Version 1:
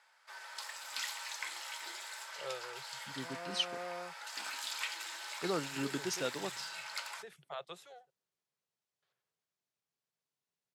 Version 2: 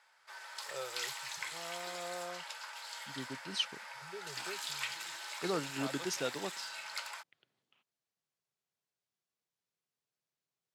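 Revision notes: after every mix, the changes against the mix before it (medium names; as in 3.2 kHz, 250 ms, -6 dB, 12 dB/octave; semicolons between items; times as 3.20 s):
first voice: entry -1.70 s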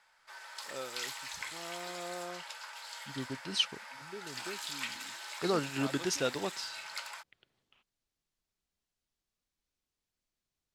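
first voice: remove Chebyshev band-stop 160–410 Hz, order 2; second voice +4.5 dB; master: remove high-pass 120 Hz 24 dB/octave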